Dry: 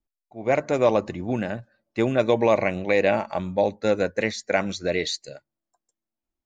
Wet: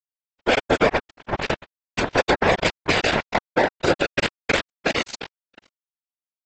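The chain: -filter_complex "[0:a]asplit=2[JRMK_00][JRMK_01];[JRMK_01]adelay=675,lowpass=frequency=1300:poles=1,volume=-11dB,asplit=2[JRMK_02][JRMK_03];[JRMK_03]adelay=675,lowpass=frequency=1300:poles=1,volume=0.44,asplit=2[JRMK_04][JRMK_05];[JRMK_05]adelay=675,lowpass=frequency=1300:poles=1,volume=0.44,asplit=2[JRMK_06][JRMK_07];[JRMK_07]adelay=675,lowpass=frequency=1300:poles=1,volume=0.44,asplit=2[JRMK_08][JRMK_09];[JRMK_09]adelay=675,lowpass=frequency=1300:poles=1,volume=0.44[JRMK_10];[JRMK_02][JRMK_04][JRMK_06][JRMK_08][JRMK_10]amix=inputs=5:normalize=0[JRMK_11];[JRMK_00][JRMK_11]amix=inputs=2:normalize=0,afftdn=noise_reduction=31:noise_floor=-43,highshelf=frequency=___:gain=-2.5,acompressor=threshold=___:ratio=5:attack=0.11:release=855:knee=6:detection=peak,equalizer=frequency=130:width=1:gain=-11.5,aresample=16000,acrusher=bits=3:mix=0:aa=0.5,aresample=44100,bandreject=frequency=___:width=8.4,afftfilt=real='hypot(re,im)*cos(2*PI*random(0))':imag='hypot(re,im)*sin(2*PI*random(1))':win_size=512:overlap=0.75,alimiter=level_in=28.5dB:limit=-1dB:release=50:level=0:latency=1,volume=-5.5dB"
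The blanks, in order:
2000, -22dB, 1200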